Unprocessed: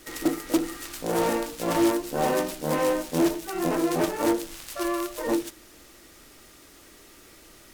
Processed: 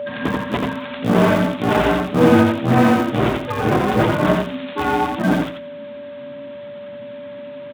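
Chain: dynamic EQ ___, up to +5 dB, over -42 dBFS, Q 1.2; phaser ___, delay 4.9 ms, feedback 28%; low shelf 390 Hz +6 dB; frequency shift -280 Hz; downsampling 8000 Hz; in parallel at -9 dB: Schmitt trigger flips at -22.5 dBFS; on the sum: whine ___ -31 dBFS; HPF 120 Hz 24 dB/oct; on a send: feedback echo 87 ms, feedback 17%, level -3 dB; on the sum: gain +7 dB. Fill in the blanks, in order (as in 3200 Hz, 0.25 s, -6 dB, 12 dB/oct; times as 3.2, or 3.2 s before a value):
1400 Hz, 0.72 Hz, 580 Hz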